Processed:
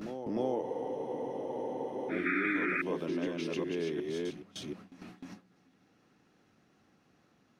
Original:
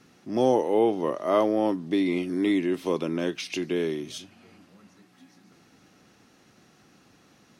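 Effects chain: chunks repeated in reverse 364 ms, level -2.5 dB; treble shelf 3.8 kHz -9.5 dB; upward compressor, threshold -36 dBFS; painted sound noise, 2.25–2.82 s, 1.2–2.5 kHz -22 dBFS; compression 2.5:1, threshold -35 dBFS, peak gain reduction 13 dB; gate with hold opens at -35 dBFS; reverse echo 306 ms -8 dB; spectral freeze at 0.65 s, 1.45 s

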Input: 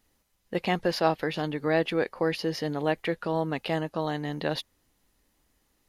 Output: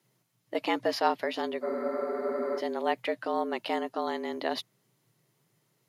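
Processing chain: frequency shift +110 Hz; spectral freeze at 1.66 s, 0.93 s; trim -2 dB

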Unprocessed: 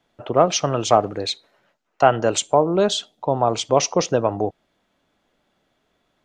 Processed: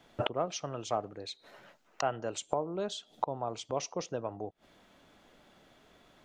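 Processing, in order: inverted gate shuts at -21 dBFS, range -24 dB; trim +7 dB

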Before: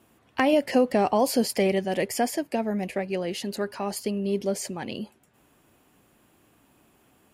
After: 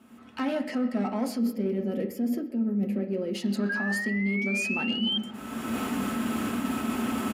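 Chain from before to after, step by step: recorder AGC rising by 31 dB/s; peaking EQ 240 Hz -4 dB 2.8 oct; saturation -21 dBFS, distortion -14 dB; high-pass 66 Hz; treble shelf 9.9 kHz -8 dB; feedback echo behind a band-pass 176 ms, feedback 72%, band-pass 820 Hz, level -18 dB; time-frequency box 1.39–3.35 s, 600–11000 Hz -13 dB; on a send at -4 dB: reverberation RT60 0.65 s, pre-delay 3 ms; on the sum: painted sound rise, 3.69–5.18 s, 1.6–3.2 kHz -25 dBFS; small resonant body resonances 230/1300 Hz, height 14 dB, ringing for 65 ms; reverse; compression 6:1, threshold -25 dBFS, peak gain reduction 13.5 dB; reverse; speakerphone echo 130 ms, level -17 dB

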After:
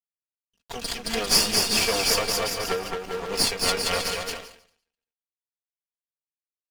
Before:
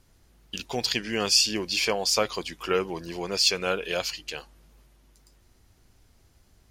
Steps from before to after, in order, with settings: comb filter that takes the minimum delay 4.3 ms; crossover distortion -43 dBFS; bouncing-ball echo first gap 220 ms, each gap 0.8×, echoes 5; endings held to a fixed fall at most 100 dB/s; trim +4 dB

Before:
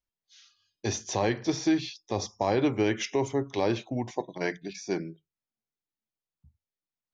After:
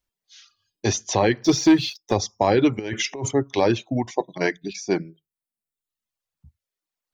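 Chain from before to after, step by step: reverb removal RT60 1 s; 1.44–2.14 s: waveshaping leveller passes 1; 2.79–3.31 s: compressor with a negative ratio -36 dBFS, ratio -1; trim +8 dB

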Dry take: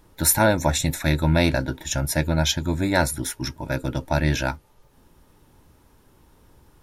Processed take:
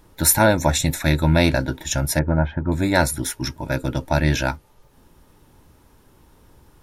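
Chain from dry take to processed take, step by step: 2.19–2.72 s: low-pass 1.6 kHz 24 dB/octave; trim +2.5 dB

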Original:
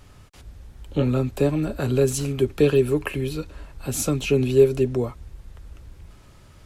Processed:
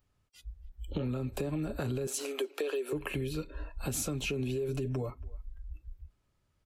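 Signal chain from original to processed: 2.07–2.93 s: high-pass 390 Hz 24 dB/octave; spectral noise reduction 26 dB; 4.68–5.10 s: comb 6.8 ms, depth 80%; peak limiter -16.5 dBFS, peak gain reduction 11 dB; compression, threshold -31 dBFS, peak gain reduction 10.5 dB; speakerphone echo 280 ms, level -22 dB

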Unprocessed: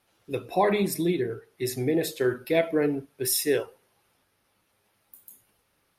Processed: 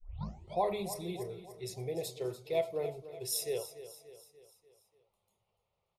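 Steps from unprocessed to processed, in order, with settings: tape start-up on the opening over 0.60 s; level-controlled noise filter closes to 2.7 kHz, open at -20.5 dBFS; static phaser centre 670 Hz, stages 4; on a send: feedback delay 291 ms, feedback 51%, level -13.5 dB; on the sum: trim -7 dB

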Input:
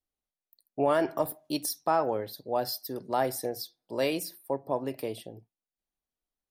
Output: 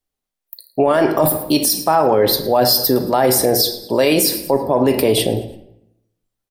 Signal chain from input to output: reverse; compression 6:1, threshold -35 dBFS, peak gain reduction 14 dB; reverse; spectral noise reduction 20 dB; frequency-shifting echo 111 ms, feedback 42%, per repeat -54 Hz, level -21 dB; on a send at -9 dB: reverberation RT60 0.80 s, pre-delay 4 ms; on the sum: loudness maximiser +31.5 dB; trim -4 dB

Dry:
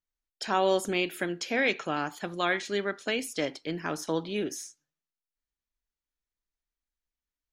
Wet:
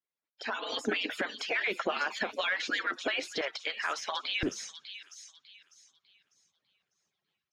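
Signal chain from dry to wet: harmonic-percussive separation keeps percussive; high-pass 270 Hz 12 dB/octave, from 3.41 s 1.2 kHz, from 4.43 s 130 Hz; compression 5:1, threshold -38 dBFS, peak gain reduction 14 dB; peak limiter -36 dBFS, peak gain reduction 11.5 dB; level rider gain up to 13.5 dB; Chebyshev shaper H 5 -30 dB, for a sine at -22.5 dBFS; distance through air 190 m; feedback echo behind a high-pass 599 ms, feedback 31%, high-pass 3.4 kHz, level -7 dB; trim +3.5 dB

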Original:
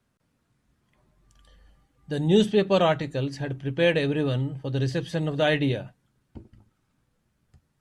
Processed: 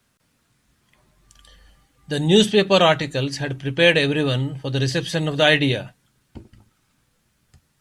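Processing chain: tilt shelf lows -5 dB, about 1.5 kHz; trim +8.5 dB

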